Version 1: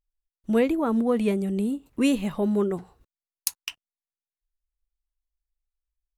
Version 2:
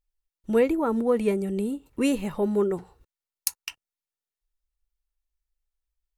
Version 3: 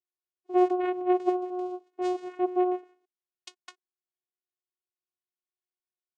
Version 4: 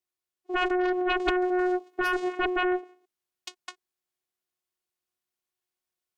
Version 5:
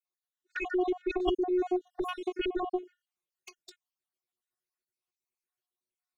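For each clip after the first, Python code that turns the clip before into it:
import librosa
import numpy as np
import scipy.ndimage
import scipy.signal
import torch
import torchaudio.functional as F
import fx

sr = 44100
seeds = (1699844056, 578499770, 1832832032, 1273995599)

y1 = fx.dynamic_eq(x, sr, hz=3400.0, q=2.7, threshold_db=-53.0, ratio=4.0, max_db=-6)
y1 = y1 + 0.31 * np.pad(y1, (int(2.2 * sr / 1000.0), 0))[:len(y1)]
y2 = fx.vocoder(y1, sr, bands=4, carrier='saw', carrier_hz=363.0)
y2 = y2 * 10.0 ** (-2.0 / 20.0)
y3 = fx.rider(y2, sr, range_db=4, speed_s=0.5)
y3 = fx.cheby_harmonics(y3, sr, harmonics=(3, 4, 7), levels_db=(-15, -13, -7), full_scale_db=-13.0)
y4 = fx.spec_dropout(y3, sr, seeds[0], share_pct=56)
y4 = fx.env_flanger(y4, sr, rest_ms=8.2, full_db=-28.5)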